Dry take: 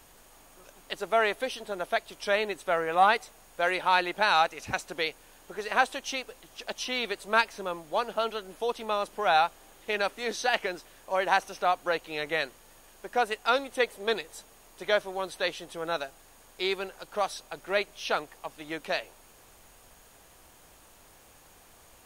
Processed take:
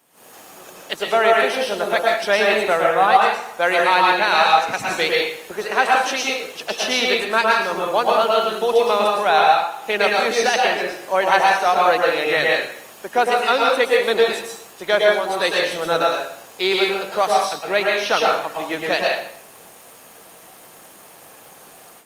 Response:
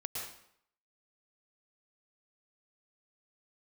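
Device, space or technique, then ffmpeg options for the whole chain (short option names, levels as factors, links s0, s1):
far-field microphone of a smart speaker: -filter_complex "[1:a]atrim=start_sample=2205[s0];[0:a][s0]afir=irnorm=-1:irlink=0,highpass=f=150:w=0.5412,highpass=f=150:w=1.3066,dynaudnorm=f=130:g=3:m=5.01,volume=0.891" -ar 48000 -c:a libopus -b:a 32k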